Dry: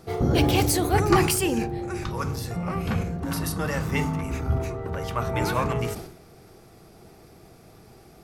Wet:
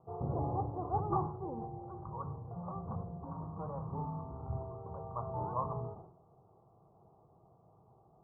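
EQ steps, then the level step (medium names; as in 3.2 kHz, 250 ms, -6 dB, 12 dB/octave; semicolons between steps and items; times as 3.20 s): steep low-pass 1.1 kHz 72 dB/octave; differentiator; resonant low shelf 190 Hz +10.5 dB, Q 1.5; +10.5 dB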